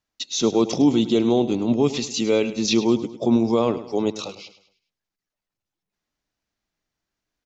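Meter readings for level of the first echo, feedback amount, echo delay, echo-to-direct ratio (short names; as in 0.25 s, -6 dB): -14.0 dB, 41%, 0.104 s, -13.0 dB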